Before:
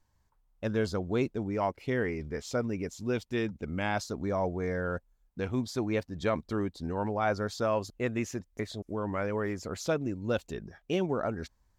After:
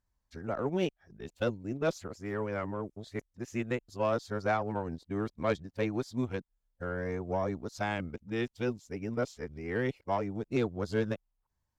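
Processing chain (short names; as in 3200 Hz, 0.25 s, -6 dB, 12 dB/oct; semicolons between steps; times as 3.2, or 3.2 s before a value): whole clip reversed; added harmonics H 2 -15 dB, 4 -20 dB, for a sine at -16.5 dBFS; upward expander 1.5:1, over -46 dBFS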